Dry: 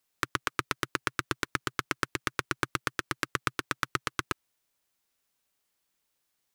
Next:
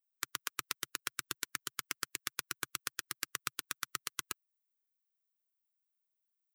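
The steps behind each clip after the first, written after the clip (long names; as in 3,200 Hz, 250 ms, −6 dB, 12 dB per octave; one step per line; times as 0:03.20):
spectral dynamics exaggerated over time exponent 1.5
first-order pre-emphasis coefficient 0.9
level +4 dB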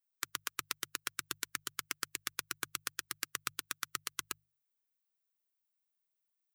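mains-hum notches 50/100/150 Hz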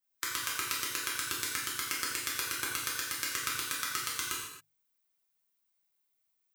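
convolution reverb, pre-delay 3 ms, DRR −6 dB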